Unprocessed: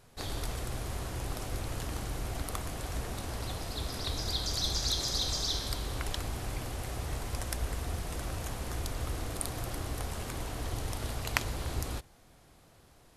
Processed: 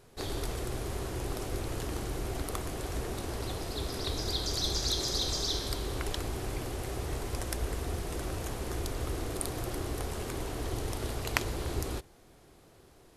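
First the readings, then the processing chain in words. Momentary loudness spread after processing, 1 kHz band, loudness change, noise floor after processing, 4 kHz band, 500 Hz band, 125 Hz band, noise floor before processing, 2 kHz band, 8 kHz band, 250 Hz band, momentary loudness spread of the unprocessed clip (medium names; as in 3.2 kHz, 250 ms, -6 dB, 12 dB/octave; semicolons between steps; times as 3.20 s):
7 LU, +0.5 dB, +0.5 dB, -58 dBFS, 0.0 dB, +5.0 dB, 0.0 dB, -60 dBFS, 0.0 dB, 0.0 dB, +3.5 dB, 8 LU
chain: peaking EQ 380 Hz +8.5 dB 0.66 oct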